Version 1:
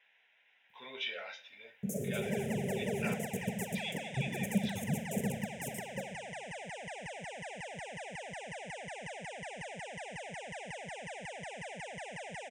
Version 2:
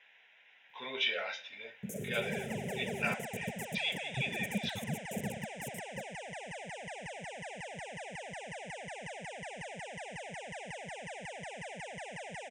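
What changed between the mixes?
speech +6.5 dB
first sound: send off

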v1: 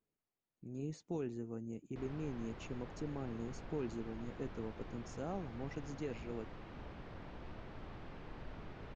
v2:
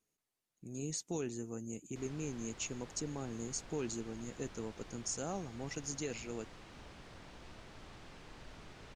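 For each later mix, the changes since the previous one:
background −5.5 dB
master: remove head-to-tape spacing loss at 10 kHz 31 dB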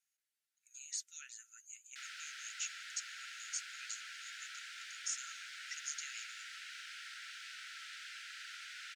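background +11.0 dB
master: add linear-phase brick-wall high-pass 1,300 Hz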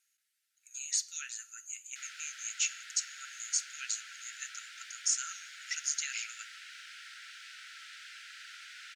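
speech +8.0 dB
reverb: on, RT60 0.55 s

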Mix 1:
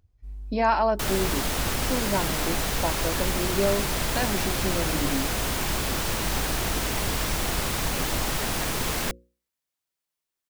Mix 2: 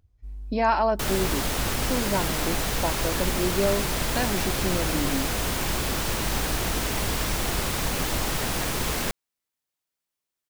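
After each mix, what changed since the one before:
master: remove mains-hum notches 60/120/180/240/300/360/420/480/540 Hz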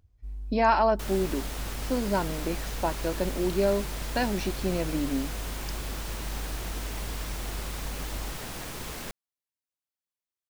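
second sound −10.5 dB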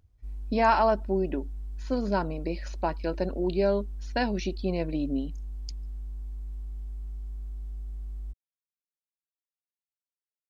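second sound: muted

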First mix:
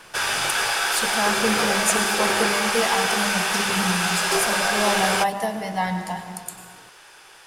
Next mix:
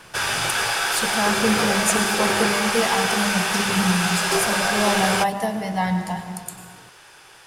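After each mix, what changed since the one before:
master: add parametric band 100 Hz +8 dB 2.2 octaves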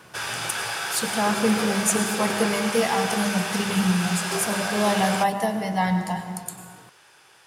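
background −6.5 dB
master: add high-pass filter 96 Hz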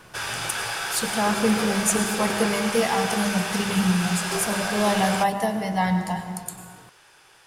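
master: remove high-pass filter 96 Hz

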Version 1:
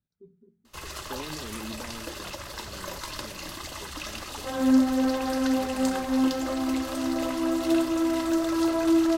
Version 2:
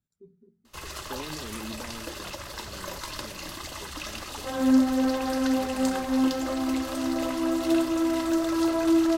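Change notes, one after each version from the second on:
speech: remove Savitzky-Golay smoothing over 15 samples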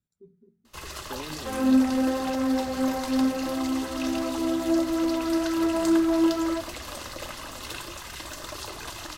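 second sound: entry −3.00 s

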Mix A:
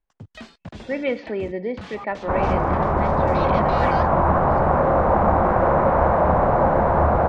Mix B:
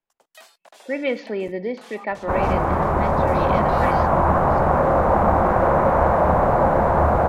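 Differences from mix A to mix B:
first sound: add four-pole ladder high-pass 530 Hz, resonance 35%
master: remove high-frequency loss of the air 140 metres

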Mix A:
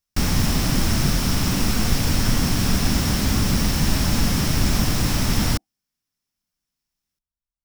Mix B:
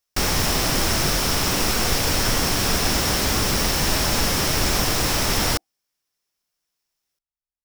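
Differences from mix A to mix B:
background +4.0 dB
master: add low shelf with overshoot 310 Hz −8.5 dB, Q 1.5

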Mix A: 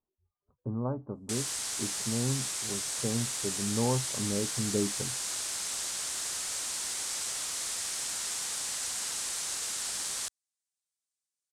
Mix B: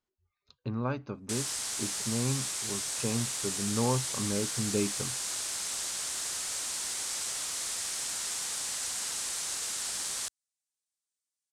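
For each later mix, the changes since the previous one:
speech: remove inverse Chebyshev low-pass filter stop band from 3,300 Hz, stop band 60 dB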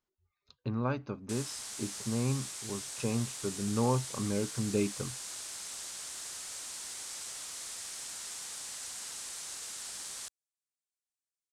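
background −7.5 dB

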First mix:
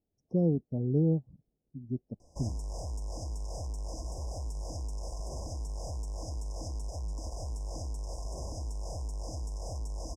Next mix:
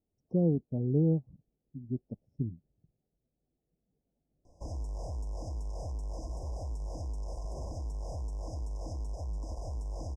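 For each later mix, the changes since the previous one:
background: entry +2.25 s
master: add high-shelf EQ 2,800 Hz −10 dB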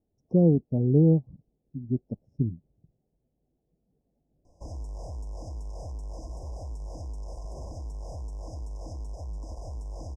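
speech +7.0 dB

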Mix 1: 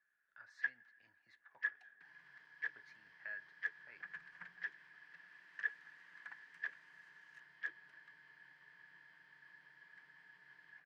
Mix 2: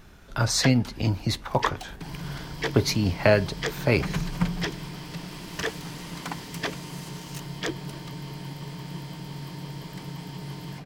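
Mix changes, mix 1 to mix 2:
speech +11.5 dB
master: remove resonant band-pass 1,700 Hz, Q 20

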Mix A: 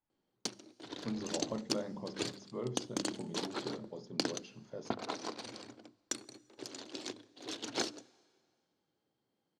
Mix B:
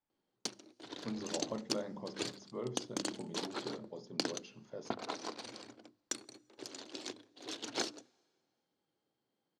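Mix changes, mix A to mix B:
background: send −6.5 dB
master: add low-shelf EQ 190 Hz −5.5 dB

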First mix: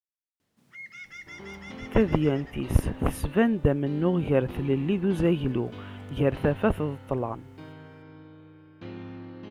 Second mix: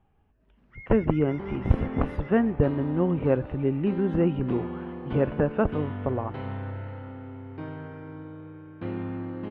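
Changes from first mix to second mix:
speech: entry −1.05 s
second sound +7.5 dB
master: add low-pass filter 1,800 Hz 12 dB per octave

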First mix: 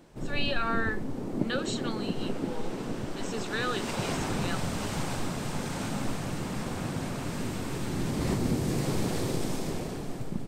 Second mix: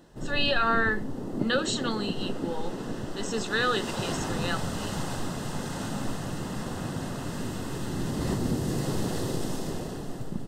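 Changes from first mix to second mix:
speech +6.0 dB
master: add Butterworth band-reject 2,300 Hz, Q 5.7

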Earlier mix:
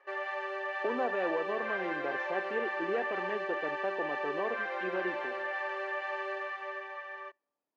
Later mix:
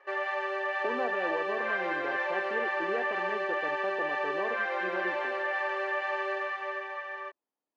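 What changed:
background +7.0 dB
reverb: off

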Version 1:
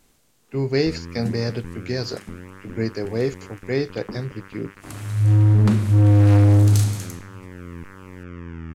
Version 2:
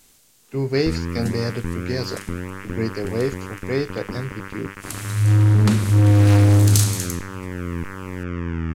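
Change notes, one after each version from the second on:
first sound +9.0 dB
second sound: add high-shelf EQ 2,300 Hz +10.5 dB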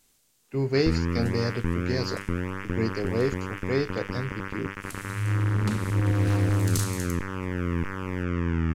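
speech −3.0 dB
second sound −10.5 dB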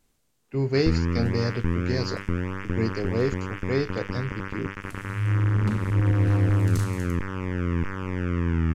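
second sound: add high-shelf EQ 2,300 Hz −10.5 dB
master: add low-shelf EQ 140 Hz +4 dB

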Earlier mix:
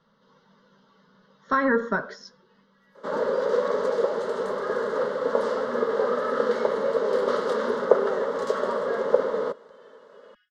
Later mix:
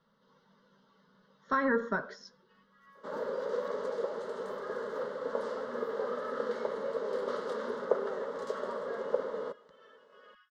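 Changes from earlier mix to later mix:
speech −6.5 dB
first sound: remove Butterworth band-reject 990 Hz, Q 1.1
second sound −10.5 dB

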